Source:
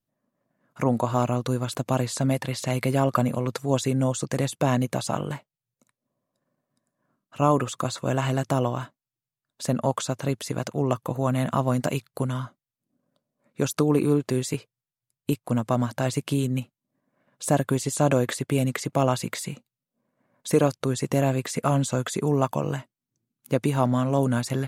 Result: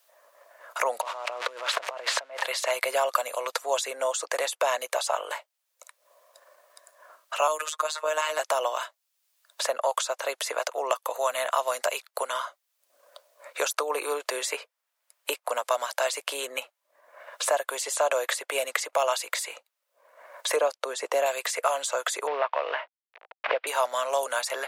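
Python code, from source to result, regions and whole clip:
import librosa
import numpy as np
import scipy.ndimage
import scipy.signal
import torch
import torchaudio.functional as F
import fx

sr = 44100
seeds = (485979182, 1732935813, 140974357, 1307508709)

y = fx.chain(x, sr, fx.crossing_spikes(level_db=-18.5),
    fx.lowpass(hz=2500.0, slope=12),
    fx.over_compress(threshold_db=-36.0, ratio=-1.0), at=(1.01, 2.43))
y = fx.chain(y, sr, fx.robotise(hz=154.0),
    fx.band_squash(depth_pct=70), at=(7.47, 8.39))
y = fx.chain(y, sr, fx.highpass(hz=130.0, slope=12),
    fx.tilt_eq(slope=-3.0), at=(20.56, 21.26))
y = fx.chain(y, sr, fx.cvsd(bps=32000),
    fx.lowpass(hz=2700.0, slope=24),
    fx.band_squash(depth_pct=100), at=(22.27, 23.67))
y = scipy.signal.sosfilt(scipy.signal.butter(6, 550.0, 'highpass', fs=sr, output='sos'), y)
y = fx.notch(y, sr, hz=770.0, q=12.0)
y = fx.band_squash(y, sr, depth_pct=70)
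y = y * librosa.db_to_amplitude(3.5)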